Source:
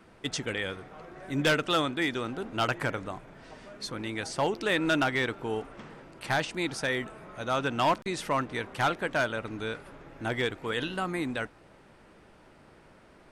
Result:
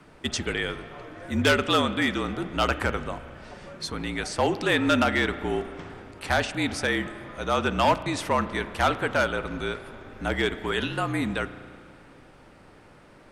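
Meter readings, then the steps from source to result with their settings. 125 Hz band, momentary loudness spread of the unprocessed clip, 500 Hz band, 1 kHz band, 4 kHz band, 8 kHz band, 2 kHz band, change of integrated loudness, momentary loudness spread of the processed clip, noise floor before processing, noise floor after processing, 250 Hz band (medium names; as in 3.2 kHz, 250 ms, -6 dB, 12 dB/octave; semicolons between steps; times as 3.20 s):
+4.5 dB, 16 LU, +4.0 dB, +4.0 dB, +4.0 dB, +4.0 dB, +3.5 dB, +4.0 dB, 16 LU, -57 dBFS, -52 dBFS, +5.0 dB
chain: spring tank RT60 2.3 s, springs 34 ms, chirp 25 ms, DRR 13 dB; frequency shift -47 Hz; trim +4 dB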